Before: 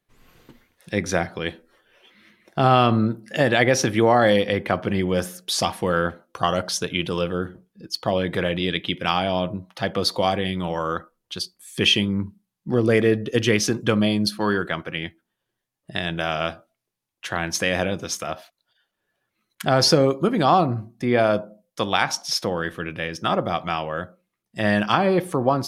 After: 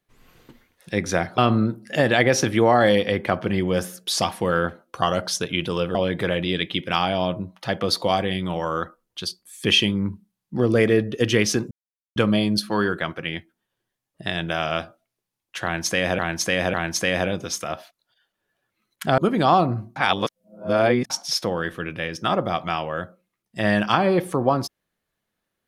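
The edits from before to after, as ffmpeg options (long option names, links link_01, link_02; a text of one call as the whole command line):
ffmpeg -i in.wav -filter_complex "[0:a]asplit=9[link_01][link_02][link_03][link_04][link_05][link_06][link_07][link_08][link_09];[link_01]atrim=end=1.382[link_10];[link_02]atrim=start=2.788:end=7.362[link_11];[link_03]atrim=start=8.088:end=13.85,asetpts=PTS-STARTPTS,afade=type=out:start_time=5.758:duration=0.004:curve=hsin,apad=pad_dur=0.45[link_12];[link_04]atrim=start=13.85:end=17.882,asetpts=PTS-STARTPTS,afade=type=in:duration=0.004:curve=hsin[link_13];[link_05]atrim=start=17.328:end=17.882[link_14];[link_06]atrim=start=17.328:end=19.772[link_15];[link_07]atrim=start=20.178:end=20.962[link_16];[link_08]atrim=start=20.958:end=22.102,asetpts=PTS-STARTPTS,areverse[link_17];[link_09]atrim=start=22.098[link_18];[link_10][link_11]acrossfade=duration=0.004:curve1=hsin:curve2=hsin[link_19];[link_12][link_13]concat=n=2:v=0:a=1[link_20];[link_19][link_20]acrossfade=duration=0.004:curve1=hsin:curve2=hsin[link_21];[link_21][link_14]acrossfade=duration=0.004:curve1=hsin:curve2=hsin[link_22];[link_22][link_15]acrossfade=duration=0.004:curve1=hsin:curve2=hsin[link_23];[link_23][link_16]acrossfade=duration=0.004:curve1=hsin:curve2=hsin[link_24];[link_24][link_17]acrossfade=duration=0.004:curve1=hsin:curve2=hsin[link_25];[link_25][link_18]acrossfade=duration=0.004:curve1=hsin:curve2=hsin" out.wav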